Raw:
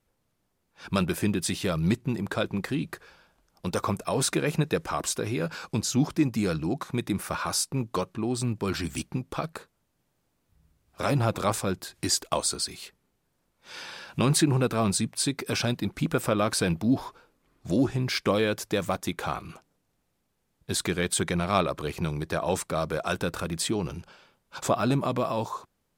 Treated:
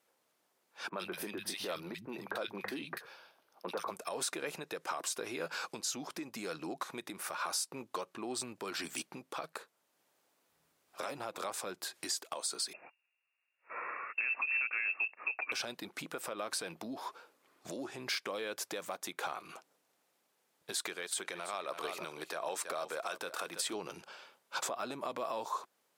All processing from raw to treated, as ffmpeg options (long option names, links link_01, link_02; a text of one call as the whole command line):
ffmpeg -i in.wav -filter_complex "[0:a]asettb=1/sr,asplit=3[link_01][link_02][link_03];[link_01]atrim=end=0.894[link_04];[link_02]atrim=start=0.89:end=3.91,asetpts=PTS-STARTPTS,afade=type=in:duration=0.004:curve=qsin,afade=type=out:start_time=3.016:duration=0.004:curve=qsin,equalizer=frequency=7800:width=1.5:gain=-8.5,bandreject=frequency=7200:width=10,acrossover=split=160|1800[link_05][link_06][link_07];[link_07]adelay=40[link_08];[link_05]adelay=110[link_09];[link_09][link_06][link_08]amix=inputs=3:normalize=0,atrim=end_sample=133182[link_10];[link_03]atrim=start=3.906[link_11];[link_04][link_10]acrossfade=duration=0.004:curve1=hsin:curve2=qsin[link_12];[link_12][link_11]acrossfade=duration=0.004:curve1=qsin:curve2=hsin,asettb=1/sr,asplit=3[link_13][link_14][link_15];[link_13]atrim=end=12.734[link_16];[link_14]atrim=start=12.73:end=15.52,asetpts=PTS-STARTPTS,afade=type=in:duration=0.004:curve=qsin,afade=type=out:start_time=2.786:duration=0.004:curve=qsin,agate=range=-13dB:threshold=-48dB:ratio=16:release=100:detection=peak,acrusher=bits=5:mode=log:mix=0:aa=0.000001,lowpass=frequency=2400:width_type=q:width=0.5098,lowpass=frequency=2400:width_type=q:width=0.6013,lowpass=frequency=2400:width_type=q:width=0.9,lowpass=frequency=2400:width_type=q:width=2.563,afreqshift=-2800[link_17];[link_15]atrim=start=15.516[link_18];[link_16][link_17]acrossfade=duration=0.004:curve1=hsin:curve2=qsin[link_19];[link_19][link_18]acrossfade=duration=0.004:curve1=qsin:curve2=hsin,asettb=1/sr,asplit=3[link_20][link_21][link_22];[link_20]atrim=end=20.724[link_23];[link_21]atrim=start=20.72:end=23.73,asetpts=PTS-STARTPTS,afade=type=in:duration=0.004:curve=qsin,afade=type=out:start_time=3.006:duration=0.004:curve=qsin,lowshelf=frequency=230:gain=-10.5,aecho=1:1:329:0.2,atrim=end_sample=132741[link_24];[link_22]atrim=start=23.726[link_25];[link_23][link_24]acrossfade=duration=0.004:curve1=hsin:curve2=qsin[link_26];[link_26][link_25]acrossfade=duration=0.004:curve1=qsin:curve2=hsin,acompressor=threshold=-26dB:ratio=6,alimiter=level_in=3.5dB:limit=-24dB:level=0:latency=1:release=399,volume=-3.5dB,highpass=450,volume=3dB" out.wav